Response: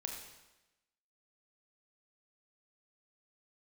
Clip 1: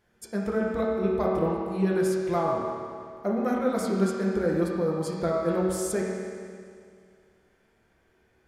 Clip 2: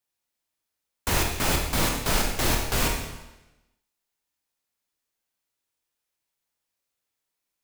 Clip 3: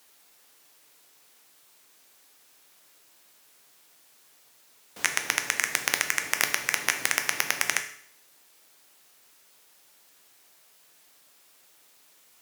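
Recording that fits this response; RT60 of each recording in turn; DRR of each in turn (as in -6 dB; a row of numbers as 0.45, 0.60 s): 2; 2.2, 1.0, 0.60 s; -3.5, 1.0, 6.0 dB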